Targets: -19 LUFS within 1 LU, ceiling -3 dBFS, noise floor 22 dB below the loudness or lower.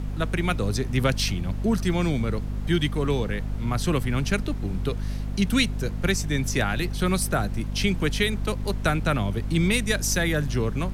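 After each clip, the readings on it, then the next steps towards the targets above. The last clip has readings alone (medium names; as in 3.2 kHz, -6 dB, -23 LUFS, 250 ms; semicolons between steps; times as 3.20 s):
hum 50 Hz; highest harmonic 250 Hz; hum level -27 dBFS; noise floor -30 dBFS; noise floor target -48 dBFS; loudness -25.5 LUFS; peak level -9.0 dBFS; loudness target -19.0 LUFS
-> de-hum 50 Hz, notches 5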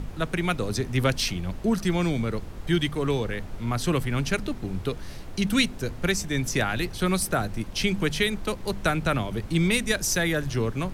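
hum not found; noise floor -39 dBFS; noise floor target -49 dBFS
-> noise print and reduce 10 dB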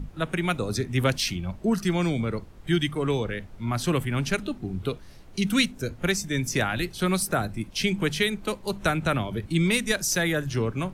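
noise floor -46 dBFS; noise floor target -49 dBFS
-> noise print and reduce 6 dB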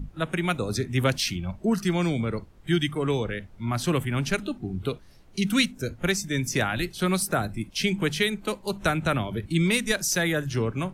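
noise floor -51 dBFS; loudness -26.5 LUFS; peak level -9.5 dBFS; loudness target -19.0 LUFS
-> trim +7.5 dB; peak limiter -3 dBFS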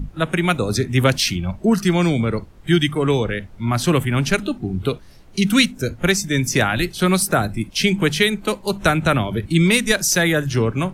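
loudness -19.0 LUFS; peak level -3.0 dBFS; noise floor -43 dBFS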